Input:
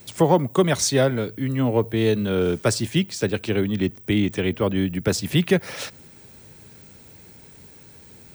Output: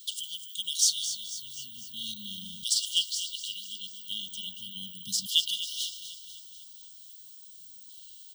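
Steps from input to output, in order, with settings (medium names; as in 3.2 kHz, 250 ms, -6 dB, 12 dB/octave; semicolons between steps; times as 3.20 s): backward echo that repeats 107 ms, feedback 50%, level -13 dB; feedback delay 248 ms, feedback 58%, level -11 dB; LFO high-pass saw down 0.38 Hz 550–3200 Hz; brick-wall FIR band-stop 230–2800 Hz; trim -1 dB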